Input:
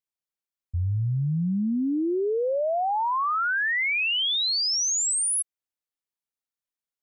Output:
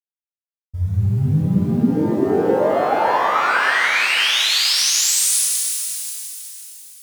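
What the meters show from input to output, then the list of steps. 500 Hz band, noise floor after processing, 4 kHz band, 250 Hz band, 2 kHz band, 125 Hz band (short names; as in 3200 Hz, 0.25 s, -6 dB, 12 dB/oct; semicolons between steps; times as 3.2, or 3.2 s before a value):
+8.0 dB, under -85 dBFS, +7.5 dB, +7.5 dB, +7.5 dB, +8.0 dB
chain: G.711 law mismatch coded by A; shimmer reverb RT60 3.5 s, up +12 st, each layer -8 dB, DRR -7 dB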